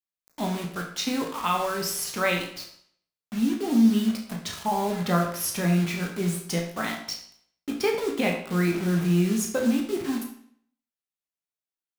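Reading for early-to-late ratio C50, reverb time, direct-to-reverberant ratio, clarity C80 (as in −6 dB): 6.0 dB, 0.60 s, 0.5 dB, 9.5 dB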